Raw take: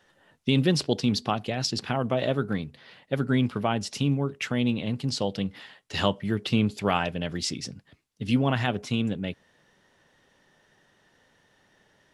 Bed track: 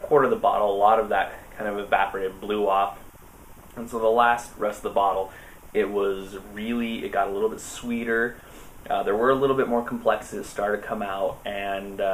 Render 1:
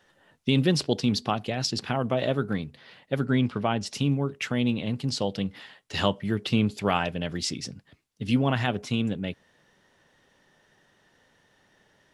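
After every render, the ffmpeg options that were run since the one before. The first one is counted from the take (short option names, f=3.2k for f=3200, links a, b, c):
-filter_complex "[0:a]asettb=1/sr,asplit=3[a][b][c];[a]atrim=end=3.264[d];[b]atrim=start=3.26:end=3.86,asetpts=PTS-STARTPTS,afade=t=in:d=0.004:c=qsin,afade=t=out:st=0.596:d=0.004:c=qsin,lowpass=7.1k[e];[c]atrim=start=3.856[f];[d][e]acrossfade=d=0.004:c1=hsin:c2=qsin[g];[g][f]acrossfade=d=0.004:c1=qsin:c2=hsin"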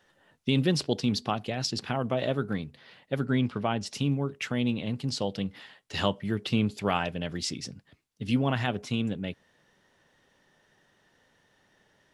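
-af "volume=-2.5dB"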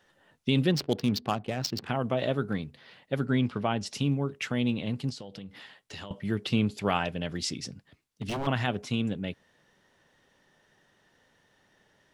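-filter_complex "[0:a]asettb=1/sr,asplit=3[a][b][c];[a]atrim=end=0.714[d];[b]atrim=start=0.71:end=1.89,asetpts=PTS-STARTPTS,afade=t=in:d=0.004:c=qsin,afade=t=out:st=1.176:d=0.004:c=qsin,adynamicsmooth=sensitivity=6:basefreq=1.2k[e];[c]atrim=start=1.886[f];[d][e]acrossfade=d=0.004:c1=hsin:c2=qsin[g];[g][f]acrossfade=d=0.004:c1=qsin:c2=hsin,asettb=1/sr,asplit=3[h][i][j];[h]atrim=end=5.104[k];[i]atrim=start=5.1:end=6.11,asetpts=PTS-STARTPTS,afade=t=in:d=0.004:c=qsin,afade=t=out:st=1.006:d=0.004:c=qsin,acompressor=threshold=-38dB:ratio=8:attack=3.2:release=140:knee=1:detection=peak[l];[j]atrim=start=6.106[m];[k][l]acrossfade=d=0.004:c1=hsin:c2=qsin[n];[n][m]acrossfade=d=0.004:c1=qsin:c2=hsin,asettb=1/sr,asplit=3[o][p][q];[o]atrim=end=7.624[r];[p]atrim=start=7.62:end=8.47,asetpts=PTS-STARTPTS,afade=t=in:d=0.004:c=qsin,afade=t=out:st=0.846:d=0.004:c=qsin,aeval=exprs='0.0473*(abs(mod(val(0)/0.0473+3,4)-2)-1)':c=same[s];[q]atrim=start=8.466[t];[r][s]acrossfade=d=0.004:c1=hsin:c2=qsin[u];[u][t]acrossfade=d=0.004:c1=qsin:c2=hsin"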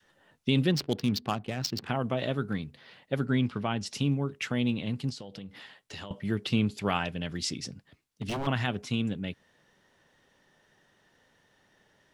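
-af "adynamicequalizer=threshold=0.00794:dfrequency=590:dqfactor=0.99:tfrequency=590:tqfactor=0.99:attack=5:release=100:ratio=0.375:range=3.5:mode=cutabove:tftype=bell"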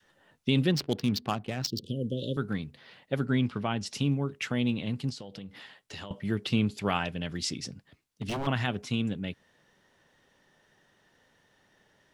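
-filter_complex "[0:a]asettb=1/sr,asplit=3[a][b][c];[a]atrim=end=1.674[d];[b]atrim=start=1.67:end=2.37,asetpts=PTS-STARTPTS,afade=t=in:d=0.004:c=qsin,afade=t=out:st=0.696:d=0.004:c=qsin,asuperstop=centerf=1300:order=20:qfactor=0.52[e];[c]atrim=start=2.366[f];[d][e]acrossfade=d=0.004:c1=hsin:c2=qsin[g];[g][f]acrossfade=d=0.004:c1=qsin:c2=hsin"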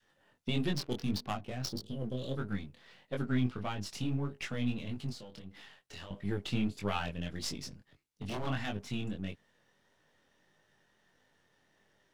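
-af "aeval=exprs='if(lt(val(0),0),0.447*val(0),val(0))':c=same,flanger=delay=19.5:depth=4.5:speed=1.6"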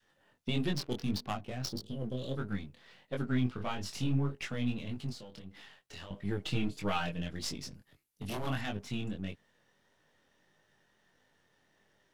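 -filter_complex "[0:a]asettb=1/sr,asplit=3[a][b][c];[a]atrim=end=3.584[d];[b]atrim=start=3.58:end=4.35,asetpts=PTS-STARTPTS,afade=t=in:d=0.004:c=qsin,afade=t=out:st=0.766:d=0.004:c=qsin,asplit=2[e][f];[f]adelay=22,volume=-3.5dB[g];[e][g]amix=inputs=2:normalize=0,atrim=end_sample=33957[h];[c]atrim=start=4.346[i];[d][h]acrossfade=d=0.004:c1=hsin:c2=qsin[j];[j][i]acrossfade=d=0.004:c1=qsin:c2=hsin,asettb=1/sr,asplit=3[k][l][m];[k]atrim=end=6.404[n];[l]atrim=start=6.4:end=7.22,asetpts=PTS-STARTPTS,afade=t=in:d=0.004:c=qsin,afade=t=out:st=0.816:d=0.004:c=qsin,aecho=1:1:6.4:0.65,atrim=end_sample=36162[o];[m]atrim=start=7.216[p];[n][o]acrossfade=d=0.004:c1=hsin:c2=qsin[q];[q][p]acrossfade=d=0.004:c1=qsin:c2=hsin,asettb=1/sr,asplit=3[r][s][t];[r]atrim=end=7.744[u];[s]atrim=start=7.74:end=8.61,asetpts=PTS-STARTPTS,afade=t=in:d=0.004:c=qsin,afade=t=out:st=0.866:d=0.004:c=qsin,equalizer=f=12k:w=1.2:g=13[v];[t]atrim=start=8.606[w];[u][v]acrossfade=d=0.004:c1=hsin:c2=qsin[x];[x][w]acrossfade=d=0.004:c1=qsin:c2=hsin"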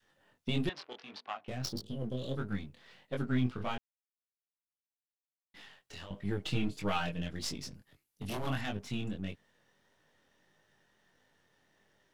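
-filter_complex "[0:a]asettb=1/sr,asplit=3[a][b][c];[a]atrim=end=0.694[d];[b]atrim=start=0.69:end=1.48,asetpts=PTS-STARTPTS,afade=t=in:d=0.004:c=qsin,afade=t=out:st=0.786:d=0.004:c=qsin,highpass=750,lowpass=3k[e];[c]atrim=start=1.476[f];[d][e]acrossfade=d=0.004:c1=hsin:c2=qsin[g];[g][f]acrossfade=d=0.004:c1=qsin:c2=hsin,asplit=3[h][i][j];[h]atrim=end=3.78,asetpts=PTS-STARTPTS,afade=t=out:st=3.776:d=0.004:c=hsin[k];[i]atrim=start=3.78:end=5.54,asetpts=PTS-STARTPTS,volume=0[l];[j]atrim=start=5.54,asetpts=PTS-STARTPTS,afade=t=in:d=0.004:c=hsin[m];[k][l][m]concat=n=3:v=0:a=1"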